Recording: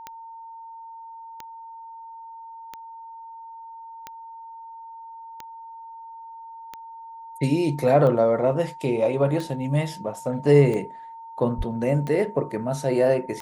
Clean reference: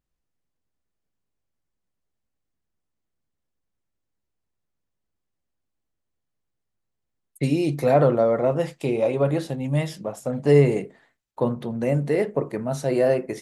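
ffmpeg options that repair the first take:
-filter_complex "[0:a]adeclick=t=4,bandreject=f=910:w=30,asplit=3[s0][s1][s2];[s0]afade=t=out:st=11.57:d=0.02[s3];[s1]highpass=f=140:w=0.5412,highpass=f=140:w=1.3066,afade=t=in:st=11.57:d=0.02,afade=t=out:st=11.69:d=0.02[s4];[s2]afade=t=in:st=11.69:d=0.02[s5];[s3][s4][s5]amix=inputs=3:normalize=0"

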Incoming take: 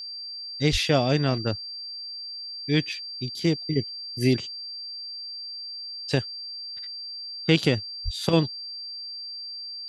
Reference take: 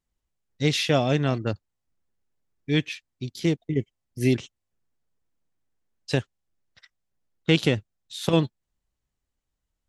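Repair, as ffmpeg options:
-filter_complex "[0:a]bandreject=f=4700:w=30,asplit=3[s0][s1][s2];[s0]afade=t=out:st=0.71:d=0.02[s3];[s1]highpass=f=140:w=0.5412,highpass=f=140:w=1.3066,afade=t=in:st=0.71:d=0.02,afade=t=out:st=0.83:d=0.02[s4];[s2]afade=t=in:st=0.83:d=0.02[s5];[s3][s4][s5]amix=inputs=3:normalize=0,asplit=3[s6][s7][s8];[s6]afade=t=out:st=8.04:d=0.02[s9];[s7]highpass=f=140:w=0.5412,highpass=f=140:w=1.3066,afade=t=in:st=8.04:d=0.02,afade=t=out:st=8.16:d=0.02[s10];[s8]afade=t=in:st=8.16:d=0.02[s11];[s9][s10][s11]amix=inputs=3:normalize=0"

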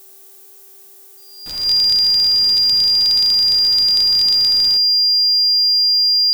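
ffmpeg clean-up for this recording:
-af "bandreject=f=388.7:t=h:w=4,bandreject=f=777.4:t=h:w=4,bandreject=f=1166.1:t=h:w=4,bandreject=f=1554.8:t=h:w=4,bandreject=f=1943.5:t=h:w=4,bandreject=f=4800:w=30,agate=range=0.0891:threshold=0.0178"

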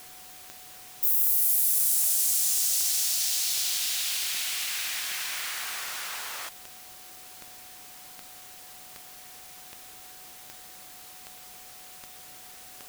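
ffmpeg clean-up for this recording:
-af "adeclick=t=4,bandreject=f=740:w=30,afftdn=nr=27:nf=-47"

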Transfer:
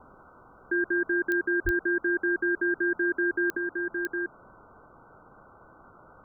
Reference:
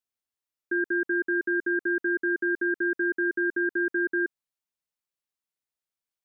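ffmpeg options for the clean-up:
-filter_complex "[0:a]adeclick=t=4,asplit=3[s0][s1][s2];[s0]afade=t=out:st=1.64:d=0.02[s3];[s1]highpass=f=140:w=0.5412,highpass=f=140:w=1.3066,afade=t=in:st=1.64:d=0.02,afade=t=out:st=1.76:d=0.02[s4];[s2]afade=t=in:st=1.76:d=0.02[s5];[s3][s4][s5]amix=inputs=3:normalize=0,afwtdn=0.0079,asetnsamples=n=441:p=0,asendcmd='3.57 volume volume 4.5dB',volume=1"

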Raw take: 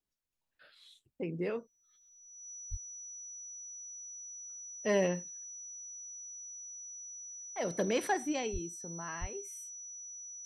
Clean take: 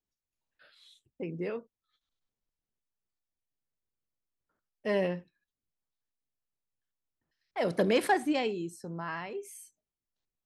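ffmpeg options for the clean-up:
-filter_complex "[0:a]bandreject=f=5900:w=30,asplit=3[s0][s1][s2];[s0]afade=t=out:st=2.7:d=0.02[s3];[s1]highpass=f=140:w=0.5412,highpass=f=140:w=1.3066,afade=t=in:st=2.7:d=0.02,afade=t=out:st=2.82:d=0.02[s4];[s2]afade=t=in:st=2.82:d=0.02[s5];[s3][s4][s5]amix=inputs=3:normalize=0,asplit=3[s6][s7][s8];[s6]afade=t=out:st=8.52:d=0.02[s9];[s7]highpass=f=140:w=0.5412,highpass=f=140:w=1.3066,afade=t=in:st=8.52:d=0.02,afade=t=out:st=8.64:d=0.02[s10];[s8]afade=t=in:st=8.64:d=0.02[s11];[s9][s10][s11]amix=inputs=3:normalize=0,asplit=3[s12][s13][s14];[s12]afade=t=out:st=9.2:d=0.02[s15];[s13]highpass=f=140:w=0.5412,highpass=f=140:w=1.3066,afade=t=in:st=9.2:d=0.02,afade=t=out:st=9.32:d=0.02[s16];[s14]afade=t=in:st=9.32:d=0.02[s17];[s15][s16][s17]amix=inputs=3:normalize=0,asetnsamples=n=441:p=0,asendcmd='6.7 volume volume 5.5dB',volume=1"

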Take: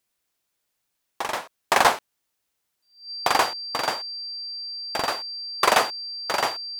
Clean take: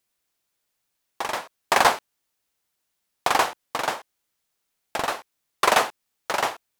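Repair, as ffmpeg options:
-af "bandreject=f=4700:w=30"

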